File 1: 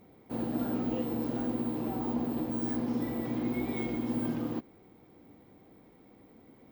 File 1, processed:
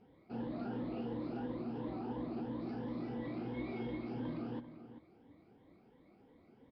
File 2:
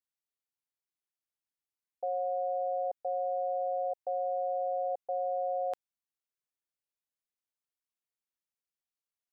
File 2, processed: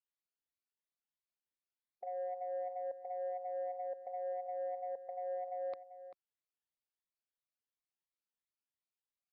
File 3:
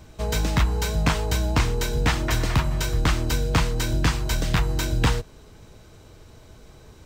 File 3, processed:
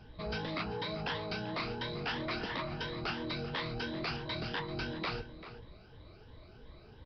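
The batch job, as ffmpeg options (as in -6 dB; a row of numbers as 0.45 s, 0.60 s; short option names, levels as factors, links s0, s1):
-filter_complex "[0:a]afftfilt=real='re*pow(10,11/40*sin(2*PI*(1.1*log(max(b,1)*sr/1024/100)/log(2)-(2.9)*(pts-256)/sr)))':imag='im*pow(10,11/40*sin(2*PI*(1.1*log(max(b,1)*sr/1024/100)/log(2)-(2.9)*(pts-256)/sr)))':win_size=1024:overlap=0.75,afftfilt=real='re*lt(hypot(re,im),0.398)':imag='im*lt(hypot(re,im),0.398)':win_size=1024:overlap=0.75,aresample=11025,asoftclip=type=tanh:threshold=0.0708,aresample=44100,asplit=2[s0][s1];[s1]adelay=390.7,volume=0.251,highshelf=f=4000:g=-8.79[s2];[s0][s2]amix=inputs=2:normalize=0,volume=0.422"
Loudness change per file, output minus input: -8.5 LU, -8.0 LU, -13.5 LU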